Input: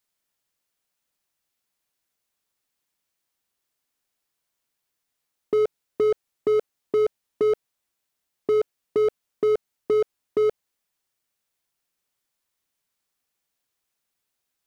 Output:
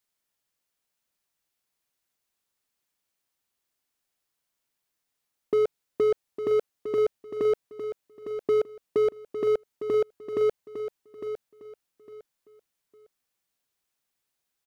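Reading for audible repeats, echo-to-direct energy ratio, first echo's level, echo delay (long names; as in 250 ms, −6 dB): 3, −9.5 dB, −10.0 dB, 856 ms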